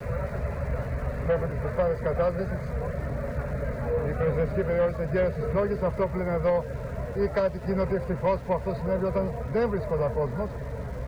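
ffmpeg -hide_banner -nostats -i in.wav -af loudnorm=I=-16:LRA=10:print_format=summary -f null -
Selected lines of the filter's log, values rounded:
Input Integrated:    -28.2 LUFS
Input True Peak:     -15.9 dBTP
Input LRA:             1.9 LU
Input Threshold:     -38.2 LUFS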